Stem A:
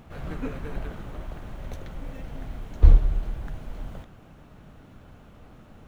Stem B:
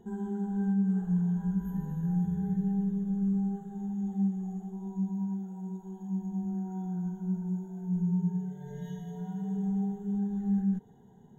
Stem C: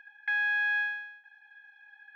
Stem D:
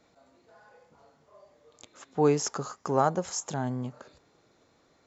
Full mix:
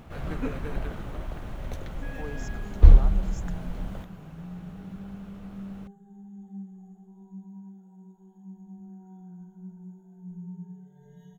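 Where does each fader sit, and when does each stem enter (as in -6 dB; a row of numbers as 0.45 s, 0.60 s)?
+1.5 dB, -11.5 dB, -19.5 dB, -17.5 dB; 0.00 s, 2.35 s, 1.75 s, 0.00 s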